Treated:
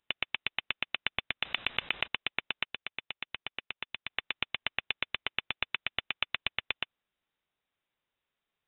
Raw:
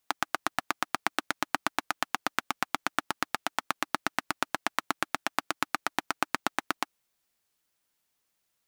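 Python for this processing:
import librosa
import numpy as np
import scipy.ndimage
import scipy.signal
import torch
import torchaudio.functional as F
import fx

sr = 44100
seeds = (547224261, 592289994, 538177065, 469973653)

y = fx.level_steps(x, sr, step_db=17, at=(2.64, 4.1))
y = fx.freq_invert(y, sr, carrier_hz=3800)
y = fx.env_flatten(y, sr, amount_pct=100, at=(1.42, 2.06), fade=0.02)
y = F.gain(torch.from_numpy(y), -3.0).numpy()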